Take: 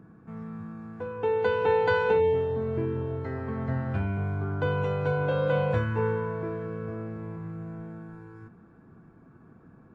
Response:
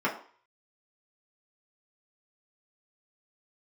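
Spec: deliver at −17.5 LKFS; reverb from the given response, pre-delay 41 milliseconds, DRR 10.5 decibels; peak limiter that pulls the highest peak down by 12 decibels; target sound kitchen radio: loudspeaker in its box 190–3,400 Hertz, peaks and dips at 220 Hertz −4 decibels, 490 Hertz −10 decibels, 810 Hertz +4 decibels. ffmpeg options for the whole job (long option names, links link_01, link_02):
-filter_complex "[0:a]alimiter=level_in=0.5dB:limit=-24dB:level=0:latency=1,volume=-0.5dB,asplit=2[link_01][link_02];[1:a]atrim=start_sample=2205,adelay=41[link_03];[link_02][link_03]afir=irnorm=-1:irlink=0,volume=-22dB[link_04];[link_01][link_04]amix=inputs=2:normalize=0,highpass=190,equalizer=frequency=220:width_type=q:width=4:gain=-4,equalizer=frequency=490:width_type=q:width=4:gain=-10,equalizer=frequency=810:width_type=q:width=4:gain=4,lowpass=frequency=3400:width=0.5412,lowpass=frequency=3400:width=1.3066,volume=19dB"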